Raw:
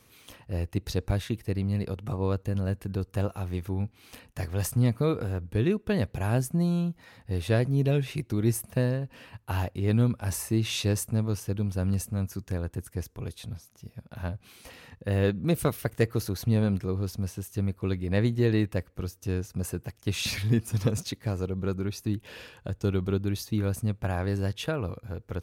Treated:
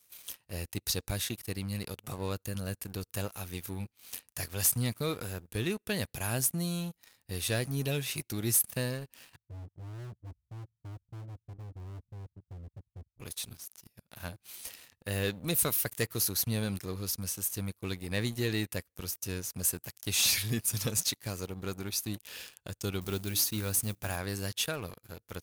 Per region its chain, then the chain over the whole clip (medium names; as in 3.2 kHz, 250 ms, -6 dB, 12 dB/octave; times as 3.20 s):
9.36–13.20 s: inverse Chebyshev low-pass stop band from 650 Hz, stop band 70 dB + hard clipper -30 dBFS
23.01–24.16 s: companding laws mixed up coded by mu + hum notches 60/120/180/240/300 Hz
whole clip: pre-emphasis filter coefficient 0.9; waveshaping leveller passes 3